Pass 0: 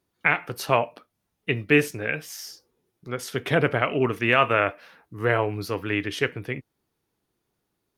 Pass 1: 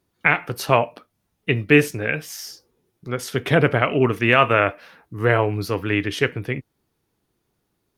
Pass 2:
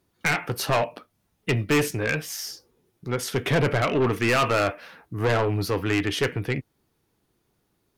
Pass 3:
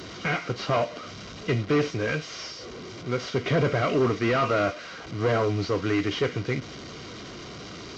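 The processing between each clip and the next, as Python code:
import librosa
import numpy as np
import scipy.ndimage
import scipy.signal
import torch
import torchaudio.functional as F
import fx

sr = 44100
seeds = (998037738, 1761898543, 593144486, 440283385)

y1 = fx.low_shelf(x, sr, hz=220.0, db=4.0)
y1 = y1 * librosa.db_to_amplitude(3.5)
y2 = 10.0 ** (-18.5 / 20.0) * np.tanh(y1 / 10.0 ** (-18.5 / 20.0))
y2 = y2 * librosa.db_to_amplitude(1.5)
y3 = fx.delta_mod(y2, sr, bps=32000, step_db=-32.5)
y3 = fx.notch_comb(y3, sr, f0_hz=870.0)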